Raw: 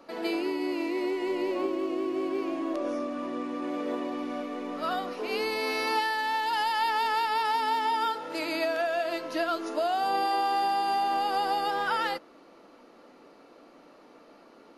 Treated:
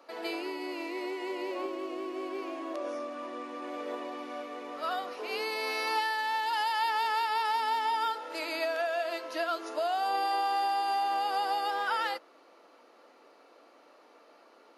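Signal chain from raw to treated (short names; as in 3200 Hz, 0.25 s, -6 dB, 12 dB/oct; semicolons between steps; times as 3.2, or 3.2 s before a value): HPF 450 Hz 12 dB/oct; gain -2 dB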